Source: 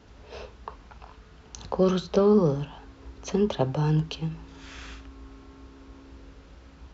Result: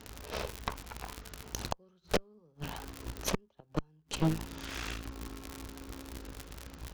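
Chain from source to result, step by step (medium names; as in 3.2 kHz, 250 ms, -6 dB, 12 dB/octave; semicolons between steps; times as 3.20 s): crackle 180 per s -36 dBFS; inverted gate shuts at -18 dBFS, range -42 dB; Chebyshev shaper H 8 -11 dB, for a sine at -17 dBFS; trim +1 dB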